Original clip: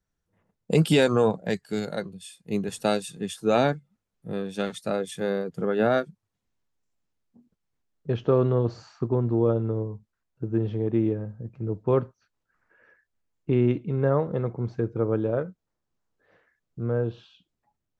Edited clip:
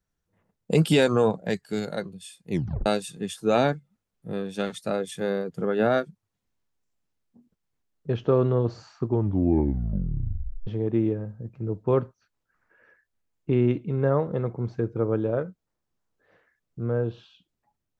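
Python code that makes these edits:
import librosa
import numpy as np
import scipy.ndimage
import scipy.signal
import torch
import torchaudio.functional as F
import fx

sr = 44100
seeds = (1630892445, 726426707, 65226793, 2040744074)

y = fx.edit(x, sr, fx.tape_stop(start_s=2.51, length_s=0.35),
    fx.tape_stop(start_s=9.05, length_s=1.62), tone=tone)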